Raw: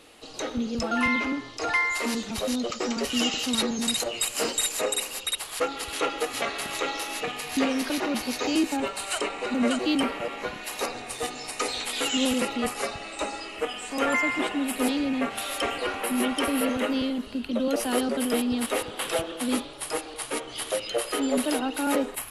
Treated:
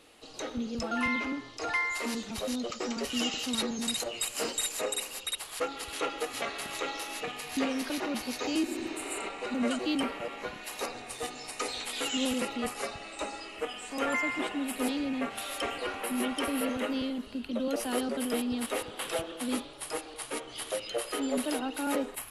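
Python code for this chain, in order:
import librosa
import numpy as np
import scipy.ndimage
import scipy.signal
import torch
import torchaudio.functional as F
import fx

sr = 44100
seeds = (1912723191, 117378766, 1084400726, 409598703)

y = fx.spec_repair(x, sr, seeds[0], start_s=8.7, length_s=0.54, low_hz=240.0, high_hz=6700.0, source='both')
y = y * 10.0 ** (-5.5 / 20.0)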